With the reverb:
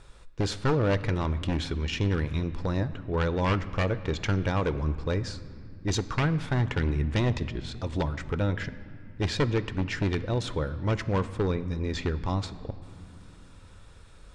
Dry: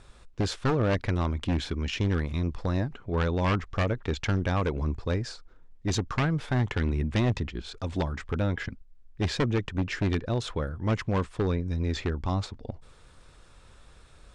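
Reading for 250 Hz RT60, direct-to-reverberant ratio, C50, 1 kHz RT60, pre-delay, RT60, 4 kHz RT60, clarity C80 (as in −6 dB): 4.3 s, 12.0 dB, 14.5 dB, 2.2 s, 6 ms, 2.5 s, 1.6 s, 15.5 dB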